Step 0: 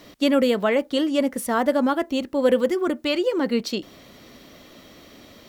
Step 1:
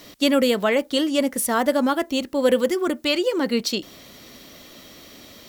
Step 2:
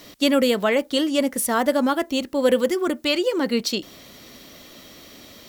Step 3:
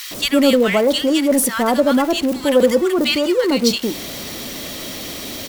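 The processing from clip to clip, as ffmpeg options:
-af "highshelf=f=3.3k:g=9"
-af anull
-filter_complex "[0:a]aeval=exprs='val(0)+0.5*0.0316*sgn(val(0))':c=same,acrossover=split=1300[a][b];[a]adelay=110[c];[c][b]amix=inputs=2:normalize=0,volume=4.5dB"

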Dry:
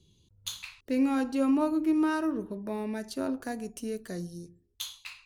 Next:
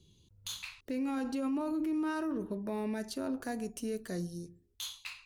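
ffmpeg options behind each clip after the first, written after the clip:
-af "alimiter=level_in=4dB:limit=-24dB:level=0:latency=1:release=24,volume=-4dB"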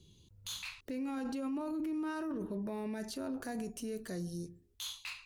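-af "alimiter=level_in=10dB:limit=-24dB:level=0:latency=1:release=12,volume=-10dB,volume=2dB"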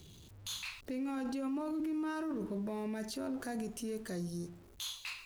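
-af "aeval=exprs='val(0)+0.5*0.00188*sgn(val(0))':c=same"

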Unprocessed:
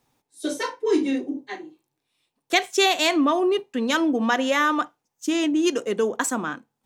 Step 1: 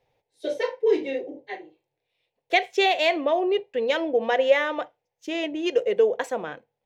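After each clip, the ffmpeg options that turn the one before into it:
-af "firequalizer=gain_entry='entry(100,0);entry(250,-15);entry(490,8);entry(1200,-12);entry(2000,1);entry(8200,-21);entry(12000,-17)':delay=0.05:min_phase=1"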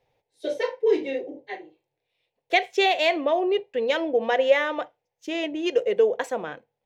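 -af anull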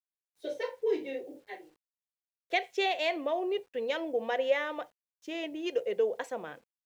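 -af "acrusher=bits=9:mix=0:aa=0.000001,volume=-8.5dB"

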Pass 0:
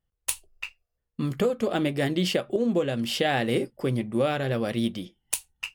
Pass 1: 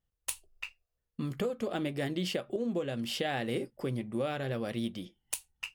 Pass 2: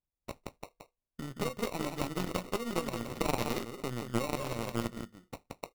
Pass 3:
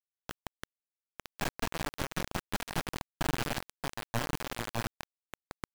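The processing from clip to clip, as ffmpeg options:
-af "acompressor=threshold=-34dB:ratio=1.5,volume=-3.5dB"
-af "acrusher=samples=27:mix=1:aa=0.000001,aecho=1:1:174:0.596,aeval=exprs='0.168*(cos(1*acos(clip(val(0)/0.168,-1,1)))-cos(1*PI/2))+0.075*(cos(2*acos(clip(val(0)/0.168,-1,1)))-cos(2*PI/2))+0.0168*(cos(7*acos(clip(val(0)/0.168,-1,1)))-cos(7*PI/2))':c=same"
-af "highpass=150,lowpass=4k,aeval=exprs='abs(val(0))':c=same,acrusher=bits=4:mix=0:aa=0.000001"

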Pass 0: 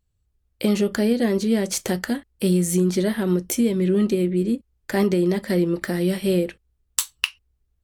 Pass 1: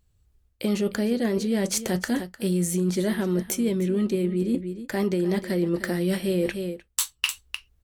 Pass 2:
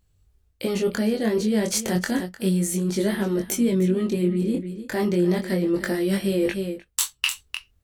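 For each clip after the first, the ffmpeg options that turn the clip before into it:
-af "aecho=1:1:304:0.15,areverse,acompressor=threshold=-30dB:ratio=4,areverse,volume=6.5dB"
-af "flanger=delay=20:depth=3.5:speed=0.32,volume=5dB"

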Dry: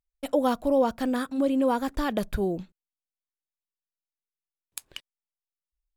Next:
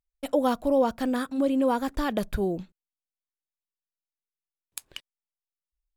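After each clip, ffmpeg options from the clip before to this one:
-af anull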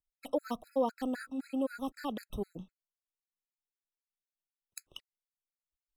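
-filter_complex "[0:a]acrossover=split=290[a][b];[a]asoftclip=type=hard:threshold=-29dB[c];[c][b]amix=inputs=2:normalize=0,afftfilt=real='re*gt(sin(2*PI*3.9*pts/sr)*(1-2*mod(floor(b*sr/1024/1300),2)),0)':imag='im*gt(sin(2*PI*3.9*pts/sr)*(1-2*mod(floor(b*sr/1024/1300),2)),0)':win_size=1024:overlap=0.75,volume=-6.5dB"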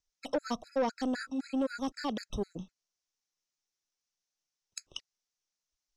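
-af "asoftclip=type=tanh:threshold=-26.5dB,lowpass=f=5.9k:t=q:w=4.3,volume=3.5dB"

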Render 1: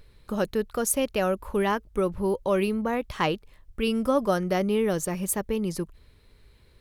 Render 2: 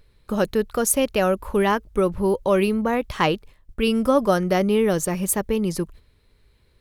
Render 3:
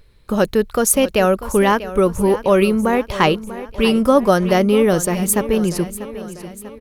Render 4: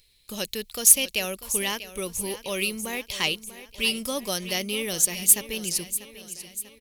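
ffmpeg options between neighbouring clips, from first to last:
-af "agate=range=-8dB:threshold=-46dB:ratio=16:detection=peak,volume=5dB"
-af "aecho=1:1:642|1284|1926|2568|3210:0.188|0.104|0.057|0.0313|0.0172,volume=5dB"
-af "aexciter=amount=7:drive=7.7:freq=2.1k,volume=-18dB"

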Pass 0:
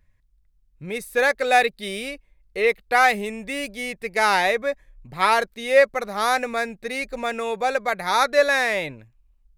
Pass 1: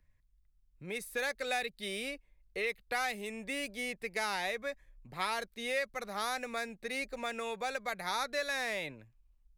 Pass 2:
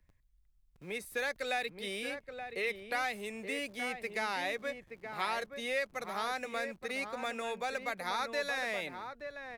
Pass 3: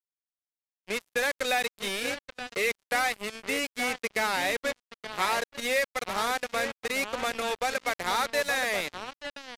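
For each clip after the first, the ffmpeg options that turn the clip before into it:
-filter_complex "[0:a]acrossover=split=200|1100|2700[a][b][c][d];[a]acompressor=threshold=-47dB:ratio=4[e];[b]acompressor=threshold=-32dB:ratio=4[f];[c]acompressor=threshold=-33dB:ratio=4[g];[d]acompressor=threshold=-31dB:ratio=4[h];[e][f][g][h]amix=inputs=4:normalize=0,volume=-7dB"
-filter_complex "[0:a]acrossover=split=140|4200[a][b][c];[a]aeval=exprs='(mod(1000*val(0)+1,2)-1)/1000':c=same[d];[c]alimiter=level_in=16.5dB:limit=-24dB:level=0:latency=1:release=25,volume=-16.5dB[e];[d][b][e]amix=inputs=3:normalize=0,asplit=2[f][g];[g]adelay=874.6,volume=-7dB,highshelf=f=4k:g=-19.7[h];[f][h]amix=inputs=2:normalize=0"
-af "acrusher=bits=5:mix=0:aa=0.5,aresample=32000,aresample=44100,volume=7dB"

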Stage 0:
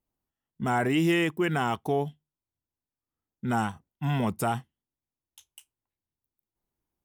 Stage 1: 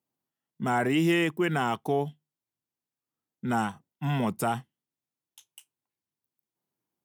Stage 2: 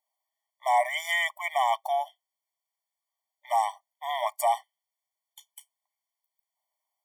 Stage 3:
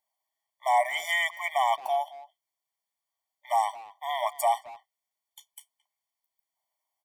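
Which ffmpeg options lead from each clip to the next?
-af "highpass=f=120:w=0.5412,highpass=f=120:w=1.3066"
-af "afftfilt=real='re*eq(mod(floor(b*sr/1024/600),2),1)':imag='im*eq(mod(floor(b*sr/1024/600),2),1)':win_size=1024:overlap=0.75,volume=6dB"
-filter_complex "[0:a]asplit=2[a][b];[b]adelay=220,highpass=300,lowpass=3.4k,asoftclip=type=hard:threshold=-23.5dB,volume=-17dB[c];[a][c]amix=inputs=2:normalize=0"

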